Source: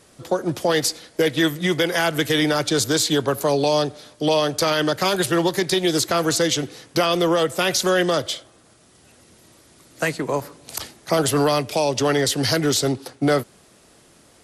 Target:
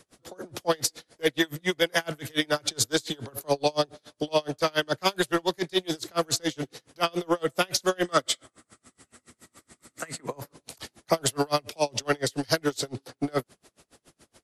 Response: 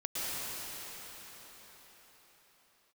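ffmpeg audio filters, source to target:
-filter_complex "[0:a]asettb=1/sr,asplit=3[a][b][c];[a]atrim=end=8.054[d];[b]atrim=start=8.05:end=10.26,asetpts=PTS-STARTPTS,afade=t=in:d=0.004:c=qsin,afade=t=out:st=2.206:d=0.004:c=qsin,equalizer=f=250:t=o:w=0.33:g=6,equalizer=f=1.25k:t=o:w=0.33:g=9,equalizer=f=2k:t=o:w=0.33:g=8,equalizer=f=8k:t=o:w=0.33:g=10[e];[c]atrim=start=10.256[f];[d][e]acrossfade=d=0.004:c1=hsin:c2=qsin[g];[g][f]acrossfade=d=0.004:c1=qsin:c2=hsin,acrossover=split=380|1900[h][i][j];[h]asoftclip=type=tanh:threshold=-24dB[k];[k][i][j]amix=inputs=3:normalize=0,aeval=exprs='val(0)*pow(10,-34*(0.5-0.5*cos(2*PI*7.1*n/s))/20)':c=same"

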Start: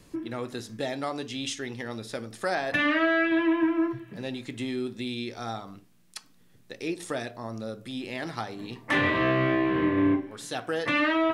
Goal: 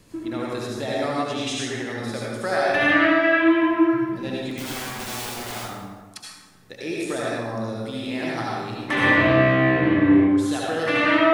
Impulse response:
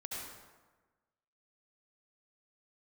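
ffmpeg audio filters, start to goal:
-filter_complex "[0:a]asettb=1/sr,asplit=3[a][b][c];[a]atrim=end=4.514[d];[b]atrim=start=4.51:end=5.56,asetpts=PTS-STARTPTS,afade=t=in:d=0.004:c=qsin,afade=t=out:st=1.046:d=0.004:c=qsin,aeval=exprs='(mod(42.2*val(0)+1,2)-1)/42.2':c=same[e];[c]atrim=start=5.556[f];[d][e]acrossfade=d=0.004:c1=hsin:c2=qsin[g];[g][f]acrossfade=d=0.004:c1=qsin:c2=hsin[h];[1:a]atrim=start_sample=2205[i];[h][i]afir=irnorm=-1:irlink=0,volume=6.5dB"

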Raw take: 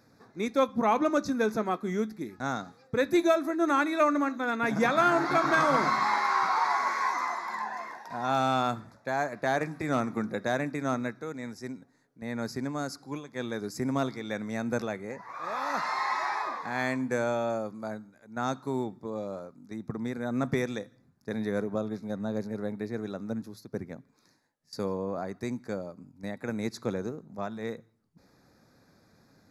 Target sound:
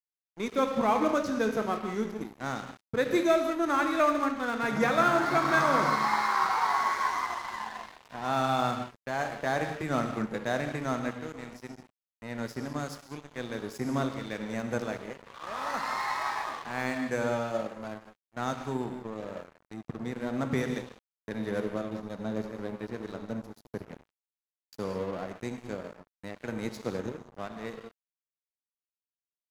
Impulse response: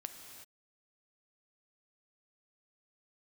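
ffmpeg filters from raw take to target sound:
-filter_complex "[1:a]atrim=start_sample=2205,asetrate=74970,aresample=44100[a];[0:a][a]afir=irnorm=-1:irlink=0,aeval=exprs='sgn(val(0))*max(abs(val(0))-0.00376,0)':c=same,volume=8dB"

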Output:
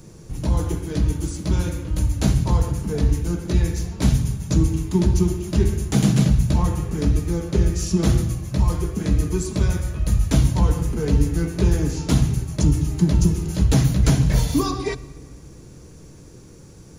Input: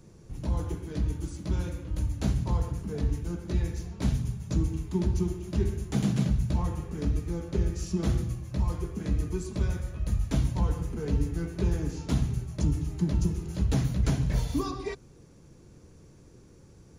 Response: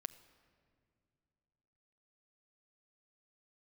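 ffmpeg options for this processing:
-filter_complex "[0:a]asplit=2[a][b];[1:a]atrim=start_sample=2205,highshelf=f=4.6k:g=9[c];[b][c]afir=irnorm=-1:irlink=0,volume=8.5dB[d];[a][d]amix=inputs=2:normalize=0"

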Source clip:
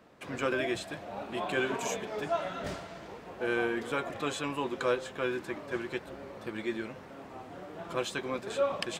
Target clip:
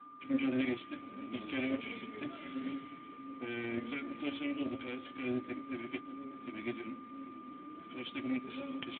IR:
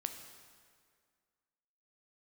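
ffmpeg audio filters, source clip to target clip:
-filter_complex "[0:a]bandreject=f=56.08:t=h:w=4,bandreject=f=112.16:t=h:w=4,bandreject=f=168.24:t=h:w=4,bandreject=f=224.32:t=h:w=4,bandreject=f=280.4:t=h:w=4,bandreject=f=336.48:t=h:w=4,bandreject=f=392.56:t=h:w=4,bandreject=f=448.64:t=h:w=4,asplit=2[a][b];[b]alimiter=level_in=1.5dB:limit=-24dB:level=0:latency=1:release=82,volume=-1.5dB,volume=-2dB[c];[a][c]amix=inputs=2:normalize=0,asplit=3[d][e][f];[d]bandpass=f=270:t=q:w=8,volume=0dB[g];[e]bandpass=f=2.29k:t=q:w=8,volume=-6dB[h];[f]bandpass=f=3.01k:t=q:w=8,volume=-9dB[i];[g][h][i]amix=inputs=3:normalize=0,aeval=exprs='0.0501*(cos(1*acos(clip(val(0)/0.0501,-1,1)))-cos(1*PI/2))+0.000316*(cos(2*acos(clip(val(0)/0.0501,-1,1)))-cos(2*PI/2))+0.0112*(cos(4*acos(clip(val(0)/0.0501,-1,1)))-cos(4*PI/2))+0.001*(cos(6*acos(clip(val(0)/0.0501,-1,1)))-cos(6*PI/2))':c=same,asplit=2[j][k];[k]adelay=597,lowpass=f=1.1k:p=1,volume=-17.5dB,asplit=2[l][m];[m]adelay=597,lowpass=f=1.1k:p=1,volume=0.47,asplit=2[n][o];[o]adelay=597,lowpass=f=1.1k:p=1,volume=0.47,asplit=2[p][q];[q]adelay=597,lowpass=f=1.1k:p=1,volume=0.47[r];[j][l][n][p][r]amix=inputs=5:normalize=0,flanger=delay=6.9:depth=2.7:regen=62:speed=0.33:shape=triangular,aeval=exprs='val(0)+0.00126*sin(2*PI*1200*n/s)':c=same,volume=7dB" -ar 8000 -c:a libspeex -b:a 11k

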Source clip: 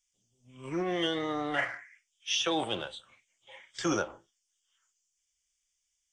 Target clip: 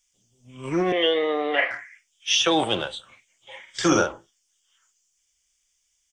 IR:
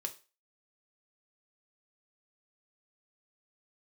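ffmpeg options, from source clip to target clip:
-filter_complex "[0:a]asettb=1/sr,asplit=3[a][b][c];[a]atrim=end=0.924[d];[b]atrim=start=0.92:end=1.71,asetpts=PTS-STARTPTS,afade=t=in:d=0.004:c=qsin,afade=t=out:st=0.786:d=0.004:c=qsin,highpass=f=280:w=0.5412,highpass=f=280:w=1.3066,equalizer=f=330:t=q:w=4:g=-6,equalizer=f=480:t=q:w=4:g=6,equalizer=f=890:t=q:w=4:g=-5,equalizer=f=1.4k:t=q:w=4:g=-10,equalizer=f=2.5k:t=q:w=4:g=7,lowpass=f=3.6k:w=0.5412,lowpass=f=3.6k:w=1.3066[e];[c]atrim=start=1.706[f];[d][e]acrossfade=d=0.004:c1=hsin:c2=qsin[g];[g][f]acrossfade=d=0.004:c1=qsin:c2=hsin,asplit=3[h][i][j];[h]afade=t=out:st=3.67:d=0.02[k];[i]asplit=2[l][m];[m]adelay=45,volume=-5.5dB[n];[l][n]amix=inputs=2:normalize=0,afade=t=in:st=3.67:d=0.02,afade=t=out:st=4.12:d=0.02[o];[j]afade=t=in:st=4.12:d=0.02[p];[k][o][p]amix=inputs=3:normalize=0,volume=9dB"

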